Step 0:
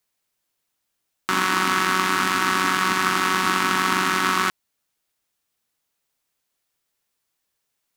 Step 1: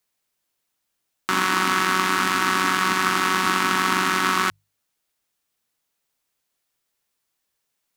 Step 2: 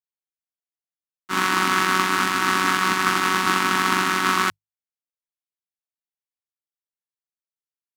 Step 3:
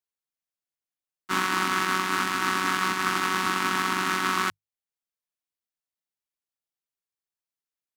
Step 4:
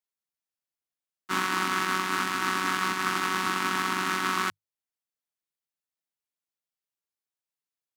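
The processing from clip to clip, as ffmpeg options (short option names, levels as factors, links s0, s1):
-af "bandreject=f=50:t=h:w=6,bandreject=f=100:t=h:w=6,bandreject=f=150:t=h:w=6"
-af "agate=range=0.0224:threshold=0.2:ratio=3:detection=peak,volume=2.11"
-af "alimiter=limit=0.299:level=0:latency=1:release=474"
-af "highpass=69,volume=0.794"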